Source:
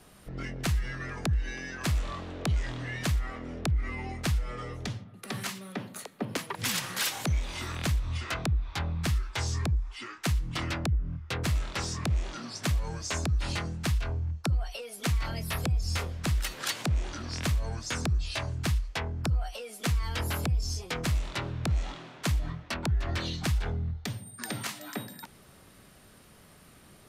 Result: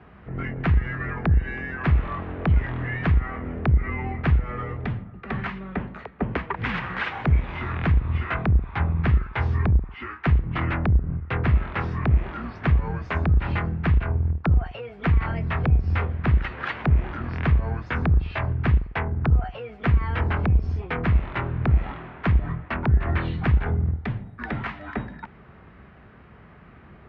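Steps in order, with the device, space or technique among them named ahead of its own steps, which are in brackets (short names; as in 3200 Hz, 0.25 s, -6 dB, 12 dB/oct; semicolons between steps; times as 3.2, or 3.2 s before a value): sub-octave bass pedal (octaver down 2 oct, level -2 dB; speaker cabinet 64–2200 Hz, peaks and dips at 65 Hz +6 dB, 290 Hz -4 dB, 560 Hz -5 dB); gain +8 dB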